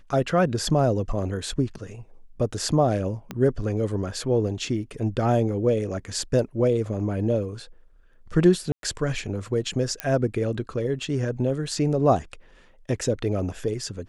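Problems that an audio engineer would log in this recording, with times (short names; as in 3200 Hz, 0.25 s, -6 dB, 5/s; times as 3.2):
3.31 pop -17 dBFS
8.72–8.83 gap 0.112 s
10 pop -10 dBFS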